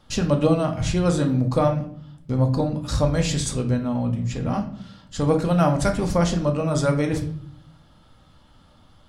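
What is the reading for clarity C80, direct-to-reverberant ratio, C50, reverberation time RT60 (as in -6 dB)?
14.0 dB, 3.0 dB, 10.0 dB, 0.60 s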